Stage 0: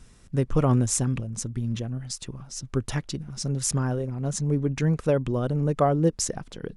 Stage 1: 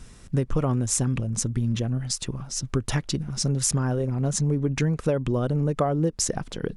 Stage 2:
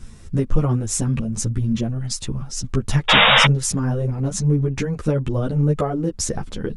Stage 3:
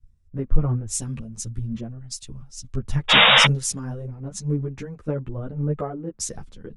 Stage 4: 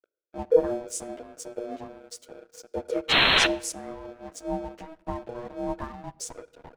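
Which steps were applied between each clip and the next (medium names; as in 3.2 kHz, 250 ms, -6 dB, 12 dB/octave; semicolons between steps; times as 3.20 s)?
compression 6:1, threshold -26 dBFS, peak gain reduction 10.5 dB; trim +6 dB
bass shelf 230 Hz +6.5 dB; painted sound noise, 3.08–3.46 s, 460–3800 Hz -14 dBFS; three-phase chorus; trim +4 dB
three bands expanded up and down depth 100%; trim -7.5 dB
ring modulator 480 Hz; crossover distortion -44.5 dBFS; on a send at -20 dB: reverberation RT60 0.90 s, pre-delay 13 ms; on the sum: trim -3 dB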